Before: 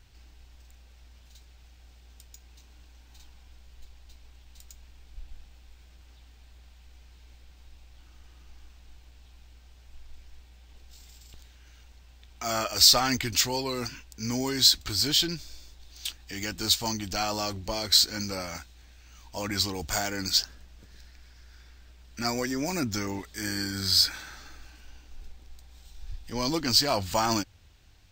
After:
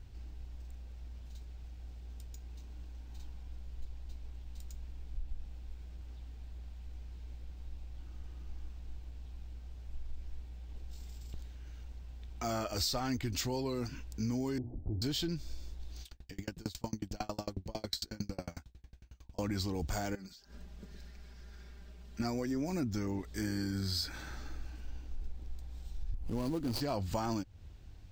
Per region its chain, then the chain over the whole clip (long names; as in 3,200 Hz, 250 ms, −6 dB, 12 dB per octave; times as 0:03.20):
0:14.58–0:15.02: Butterworth low-pass 790 Hz 48 dB per octave + mains-hum notches 60/120/180/240/300/360/420/480/540/600 Hz
0:16.02–0:19.39: notch filter 1,300 Hz, Q 18 + tremolo with a ramp in dB decaying 11 Hz, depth 36 dB
0:20.15–0:22.20: low-shelf EQ 62 Hz −11.5 dB + comb filter 5 ms, depth 67% + downward compressor 20 to 1, threshold −46 dBFS
0:26.14–0:26.81: running median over 25 samples + high-shelf EQ 2,200 Hz +12 dB + upward compression, threshold −32 dBFS
whole clip: tilt shelving filter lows +7 dB, about 720 Hz; downward compressor 4 to 1, threshold −33 dBFS